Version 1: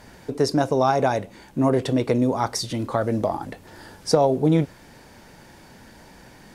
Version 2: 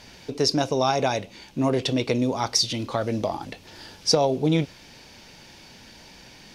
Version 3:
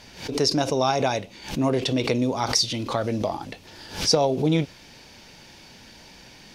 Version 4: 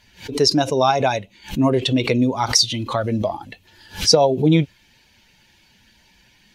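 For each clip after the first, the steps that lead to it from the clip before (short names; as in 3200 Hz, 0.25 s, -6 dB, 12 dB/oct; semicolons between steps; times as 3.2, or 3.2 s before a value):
band shelf 3800 Hz +10.5 dB; gain -3 dB
backwards sustainer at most 120 dB/s
per-bin expansion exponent 1.5; gain +7.5 dB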